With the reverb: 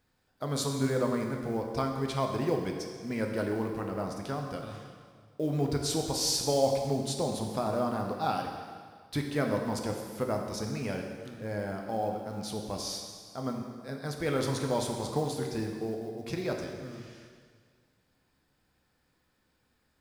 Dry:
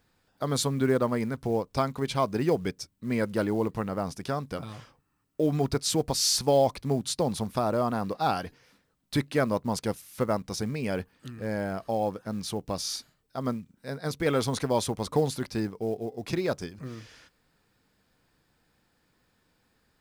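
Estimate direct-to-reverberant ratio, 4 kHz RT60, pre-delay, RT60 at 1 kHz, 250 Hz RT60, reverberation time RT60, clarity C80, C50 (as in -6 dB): 2.0 dB, 1.7 s, 4 ms, 1.8 s, 1.8 s, 1.8 s, 5.5 dB, 4.0 dB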